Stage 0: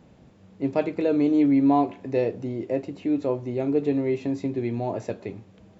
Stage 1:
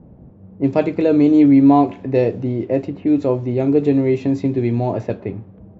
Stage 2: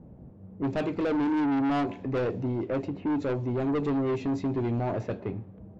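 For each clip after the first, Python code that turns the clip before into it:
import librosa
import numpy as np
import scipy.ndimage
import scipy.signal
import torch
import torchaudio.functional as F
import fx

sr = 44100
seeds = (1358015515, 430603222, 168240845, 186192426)

y1 = fx.low_shelf(x, sr, hz=200.0, db=7.5)
y1 = fx.env_lowpass(y1, sr, base_hz=680.0, full_db=-18.5)
y1 = F.gain(torch.from_numpy(y1), 6.0).numpy()
y2 = 10.0 ** (-19.0 / 20.0) * np.tanh(y1 / 10.0 ** (-19.0 / 20.0))
y2 = F.gain(torch.from_numpy(y2), -5.0).numpy()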